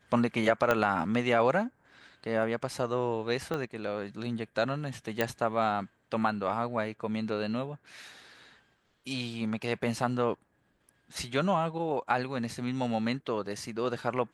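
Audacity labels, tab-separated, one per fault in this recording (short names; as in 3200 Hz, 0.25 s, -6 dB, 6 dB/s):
0.710000	0.710000	pop -12 dBFS
3.540000	3.540000	pop -20 dBFS
5.210000	5.210000	pop -13 dBFS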